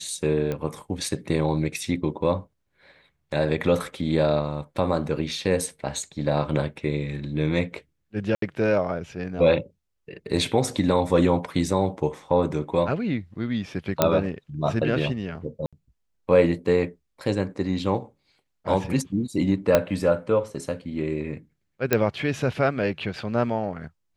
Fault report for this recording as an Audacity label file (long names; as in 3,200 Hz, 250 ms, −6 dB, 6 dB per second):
0.520000	0.520000	click −16 dBFS
8.350000	8.420000	drop-out 73 ms
14.020000	14.020000	click −3 dBFS
15.660000	15.730000	drop-out 66 ms
19.750000	19.750000	click −4 dBFS
21.930000	21.930000	click −5 dBFS